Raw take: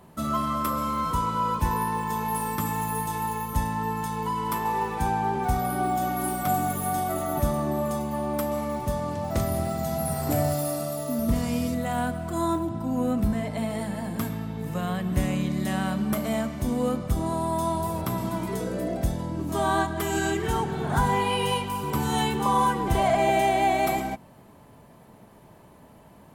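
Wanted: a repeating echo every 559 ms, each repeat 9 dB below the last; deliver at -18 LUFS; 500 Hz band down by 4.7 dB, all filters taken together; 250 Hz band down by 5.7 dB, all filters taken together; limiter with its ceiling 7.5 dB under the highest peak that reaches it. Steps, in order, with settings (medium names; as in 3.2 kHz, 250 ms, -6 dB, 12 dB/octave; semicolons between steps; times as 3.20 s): peaking EQ 250 Hz -6.5 dB; peaking EQ 500 Hz -5 dB; peak limiter -20.5 dBFS; feedback delay 559 ms, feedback 35%, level -9 dB; trim +12.5 dB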